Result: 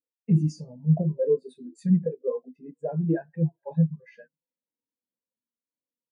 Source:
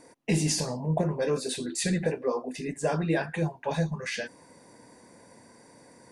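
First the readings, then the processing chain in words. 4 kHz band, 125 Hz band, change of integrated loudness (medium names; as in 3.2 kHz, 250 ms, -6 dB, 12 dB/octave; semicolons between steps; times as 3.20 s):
under -20 dB, +5.5 dB, +2.5 dB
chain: one-sided clip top -21 dBFS; echo from a far wall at 72 m, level -24 dB; spectral contrast expander 2.5:1; trim +5.5 dB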